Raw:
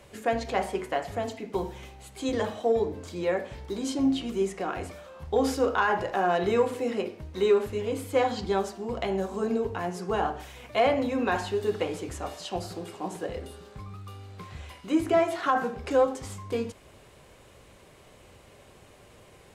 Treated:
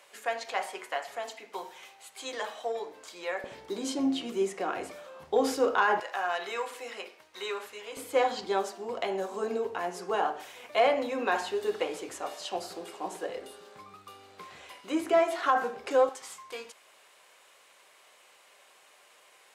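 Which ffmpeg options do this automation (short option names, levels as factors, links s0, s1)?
-af "asetnsamples=n=441:p=0,asendcmd='3.44 highpass f 290;6 highpass f 1000;7.97 highpass f 400;16.09 highpass f 920',highpass=820"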